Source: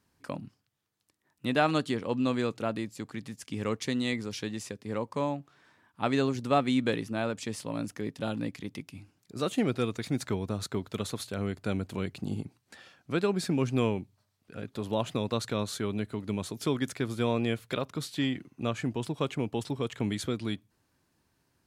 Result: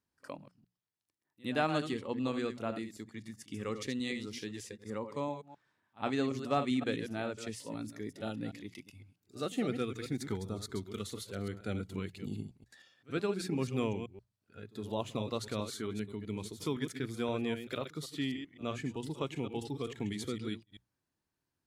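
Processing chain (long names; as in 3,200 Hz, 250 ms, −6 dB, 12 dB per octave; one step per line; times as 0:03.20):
delay that plays each chunk backwards 129 ms, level −8 dB
mains-hum notches 60/120/180 Hz
noise reduction from a noise print of the clip's start 9 dB
on a send: backwards echo 63 ms −22 dB
on the sum: level −6 dB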